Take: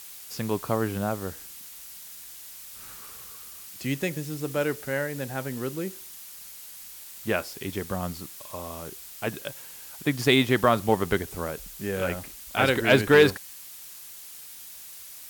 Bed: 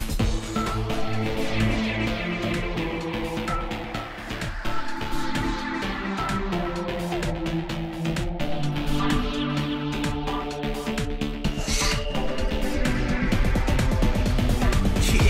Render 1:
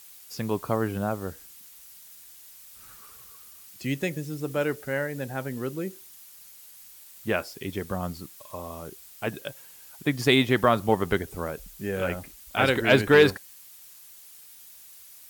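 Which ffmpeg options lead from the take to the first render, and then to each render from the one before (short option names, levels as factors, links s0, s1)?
-af "afftdn=nr=7:nf=-44"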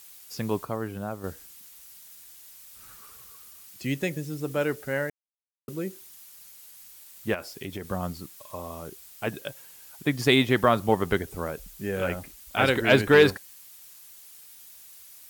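-filter_complex "[0:a]asettb=1/sr,asplit=3[s0][s1][s2];[s0]atrim=end=7.344[s3];[s1]atrim=start=7.34:end=7.85,asetpts=PTS-STARTPTS,afade=t=in:d=0.004:c=qsin,afade=t=out:st=0.506:d=0.004:c=qsin,acompressor=threshold=0.0316:ratio=5:attack=3.2:release=140:knee=1:detection=peak[s4];[s2]atrim=start=7.846[s5];[s3][s4]acrossfade=d=0.004:c1=hsin:c2=qsin[s6];[s6][s5]acrossfade=d=0.004:c1=qsin:c2=hsin,asplit=5[s7][s8][s9][s10][s11];[s7]atrim=end=0.652[s12];[s8]atrim=start=0.648:end=1.242,asetpts=PTS-STARTPTS,volume=0.531[s13];[s9]atrim=start=1.238:end=5.1,asetpts=PTS-STARTPTS,afade=t=out:st=3.858:d=0.004:c=hsin[s14];[s10]atrim=start=5.1:end=5.68,asetpts=PTS-STARTPTS,volume=0[s15];[s11]atrim=start=5.68,asetpts=PTS-STARTPTS,afade=t=in:d=0.004:c=hsin[s16];[s12][s13]acrossfade=d=0.004:c1=hsin:c2=hsin[s17];[s14][s15][s16]concat=n=3:v=0:a=1[s18];[s17][s18]acrossfade=d=0.004:c1=hsin:c2=hsin"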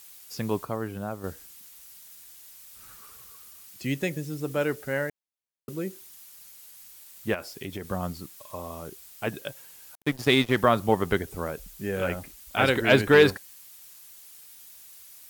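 -filter_complex "[0:a]asettb=1/sr,asplit=3[s0][s1][s2];[s0]atrim=end=9.954[s3];[s1]atrim=start=9.95:end=10.57,asetpts=PTS-STARTPTS,afade=t=in:d=0.004:c=qsin,afade=t=out:st=0.616:d=0.004:c=qsin,aeval=exprs='sgn(val(0))*max(abs(val(0))-0.0188,0)':c=same[s4];[s2]atrim=start=10.566[s5];[s3][s4]acrossfade=d=0.004:c1=hsin:c2=qsin[s6];[s6][s5]acrossfade=d=0.004:c1=qsin:c2=hsin"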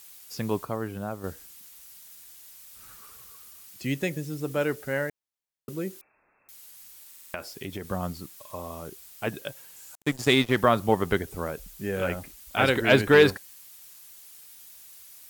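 -filter_complex "[0:a]asettb=1/sr,asplit=3[s0][s1][s2];[s0]atrim=end=6.014[s3];[s1]atrim=start=6.01:end=6.49,asetpts=PTS-STARTPTS,afade=t=in:d=0.004:c=qsin,afade=t=out:st=0.476:d=0.004:c=qsin,lowpass=f=2300:t=q:w=0.5098,lowpass=f=2300:t=q:w=0.6013,lowpass=f=2300:t=q:w=0.9,lowpass=f=2300:t=q:w=2.563,afreqshift=-2700[s4];[s2]atrim=start=6.486[s5];[s3][s4]acrossfade=d=0.004:c1=hsin:c2=qsin[s6];[s6][s5]acrossfade=d=0.004:c1=qsin:c2=hsin,asettb=1/sr,asplit=3[s7][s8][s9];[s7]atrim=end=9.764[s10];[s8]atrim=start=9.76:end=10.33,asetpts=PTS-STARTPTS,afade=t=in:d=0.004:c=qsin,afade=t=out:st=0.566:d=0.004:c=qsin,equalizer=f=7400:w=2.4:g=8.5[s11];[s9]atrim=start=10.326[s12];[s10][s11]acrossfade=d=0.004:c1=hsin:c2=qsin[s13];[s13][s12]acrossfade=d=0.004:c1=qsin:c2=hsin,asplit=6[s14][s15][s16][s17][s18][s19];[s14]atrim=end=7.142[s20];[s15]atrim=start=7.088:end=7.142[s21];[s16]atrim=start=7.088:end=7.142[s22];[s17]atrim=start=7.088:end=7.142[s23];[s18]atrim=start=7.088:end=7.142[s24];[s19]atrim=start=7.338[s25];[s20][s21]acrossfade=d=0.004:c1=hsin:c2=hsin[s26];[s26][s22]acrossfade=d=0.004:c1=hsin:c2=hsin[s27];[s27][s23]acrossfade=d=0.004:c1=hsin:c2=hsin[s28];[s28][s24]acrossfade=d=0.004:c1=hsin:c2=hsin[s29];[s29][s25]acrossfade=d=0.004:c1=hsin:c2=hsin"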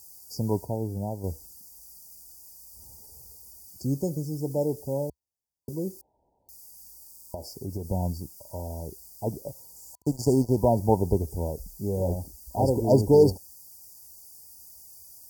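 -af "afftfilt=real='re*(1-between(b*sr/4096,990,4500))':imag='im*(1-between(b*sr/4096,990,4500))':win_size=4096:overlap=0.75,equalizer=f=68:w=1.1:g=12.5"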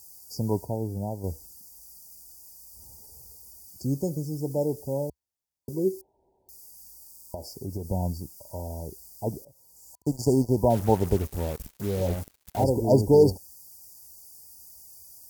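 -filter_complex "[0:a]asettb=1/sr,asplit=3[s0][s1][s2];[s0]atrim=end=5.744[s3];[s1]atrim=start=5.74:end=6.73,asetpts=PTS-STARTPTS,afade=t=in:d=0.004:c=qsin,afade=t=out:st=0.986:d=0.004:c=qsin,equalizer=f=380:w=7.2:g=13.5[s4];[s2]atrim=start=6.726[s5];[s3][s4]acrossfade=d=0.004:c1=hsin:c2=qsin[s6];[s6][s5]acrossfade=d=0.004:c1=qsin:c2=hsin,asettb=1/sr,asplit=3[s7][s8][s9];[s7]atrim=end=10.704[s10];[s8]atrim=start=10.7:end=12.64,asetpts=PTS-STARTPTS,afade=t=in:d=0.004:c=qsin,afade=t=out:st=1.936:d=0.004:c=qsin,acrusher=bits=5:mix=0:aa=0.5[s11];[s9]atrim=start=12.636[s12];[s10][s11]acrossfade=d=0.004:c1=hsin:c2=qsin[s13];[s13][s12]acrossfade=d=0.004:c1=qsin:c2=hsin,asplit=2[s14][s15];[s14]atrim=end=9.45,asetpts=PTS-STARTPTS,afade=t=out:st=9.446:d=0.004:c=hsin:silence=0.0891251[s16];[s15]atrim=start=9.45,asetpts=PTS-STARTPTS,afade=t=in:d=0.67:silence=0.0891251[s17];[s16][s17]concat=n=2:v=0:a=1"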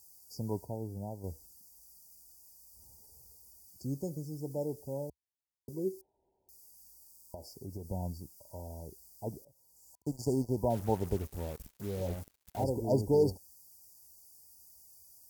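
-af "volume=0.355"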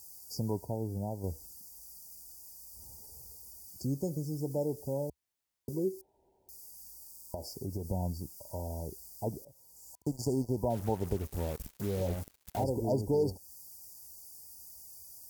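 -filter_complex "[0:a]asplit=2[s0][s1];[s1]alimiter=level_in=1.19:limit=0.0631:level=0:latency=1:release=291,volume=0.841,volume=1.26[s2];[s0][s2]amix=inputs=2:normalize=0,acompressor=threshold=0.0158:ratio=1.5"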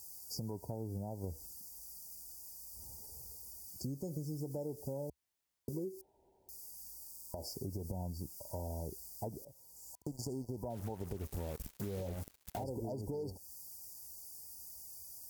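-af "alimiter=level_in=1.33:limit=0.0631:level=0:latency=1:release=131,volume=0.75,acompressor=threshold=0.0141:ratio=6"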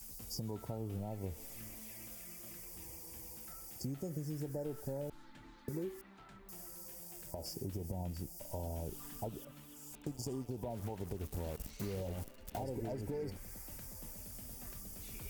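-filter_complex "[1:a]volume=0.0282[s0];[0:a][s0]amix=inputs=2:normalize=0"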